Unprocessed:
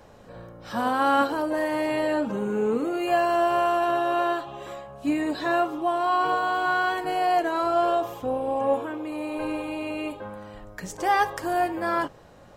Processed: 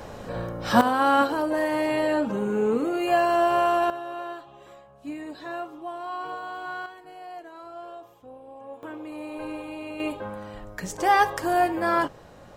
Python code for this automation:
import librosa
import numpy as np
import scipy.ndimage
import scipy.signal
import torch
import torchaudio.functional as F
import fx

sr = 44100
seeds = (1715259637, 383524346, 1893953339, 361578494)

y = fx.gain(x, sr, db=fx.steps((0.0, 11.0), (0.81, 1.0), (3.9, -10.5), (6.86, -18.0), (8.83, -5.0), (10.0, 2.5)))